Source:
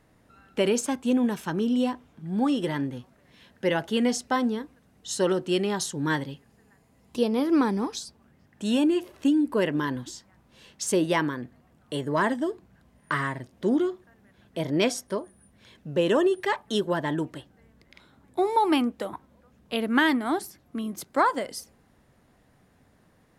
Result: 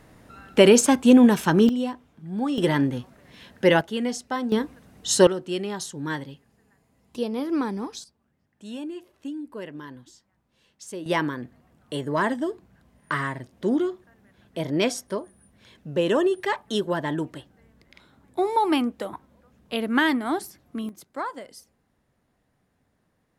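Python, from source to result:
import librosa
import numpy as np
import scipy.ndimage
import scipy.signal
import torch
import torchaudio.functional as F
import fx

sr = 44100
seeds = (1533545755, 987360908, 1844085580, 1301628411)

y = fx.gain(x, sr, db=fx.steps((0.0, 9.5), (1.69, -2.0), (2.58, 7.0), (3.81, -3.0), (4.52, 9.0), (5.27, -3.5), (8.04, -12.0), (11.06, 0.5), (20.89, -9.0)))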